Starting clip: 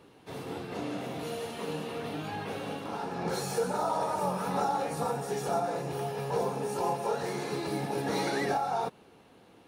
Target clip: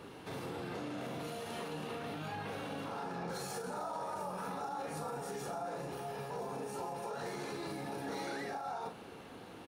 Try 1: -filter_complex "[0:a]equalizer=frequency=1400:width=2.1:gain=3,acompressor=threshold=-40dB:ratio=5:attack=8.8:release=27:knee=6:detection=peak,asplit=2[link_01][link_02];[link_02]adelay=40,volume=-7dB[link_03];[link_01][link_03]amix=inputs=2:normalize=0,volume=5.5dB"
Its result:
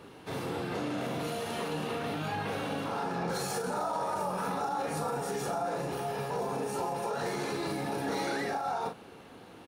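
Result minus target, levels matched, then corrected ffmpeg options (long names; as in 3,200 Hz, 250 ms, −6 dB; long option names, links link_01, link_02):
downward compressor: peak gain reduction −7.5 dB
-filter_complex "[0:a]equalizer=frequency=1400:width=2.1:gain=3,acompressor=threshold=-49.5dB:ratio=5:attack=8.8:release=27:knee=6:detection=peak,asplit=2[link_01][link_02];[link_02]adelay=40,volume=-7dB[link_03];[link_01][link_03]amix=inputs=2:normalize=0,volume=5.5dB"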